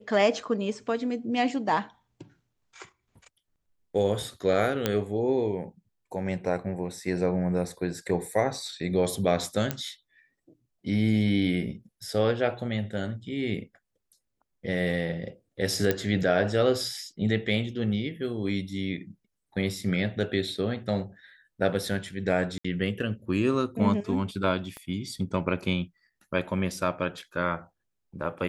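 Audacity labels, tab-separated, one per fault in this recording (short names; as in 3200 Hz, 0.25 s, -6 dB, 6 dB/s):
4.860000	4.860000	pop -9 dBFS
9.710000	9.710000	pop -12 dBFS
15.910000	15.910000	pop -10 dBFS
22.580000	22.640000	gap 65 ms
24.770000	24.770000	pop -24 dBFS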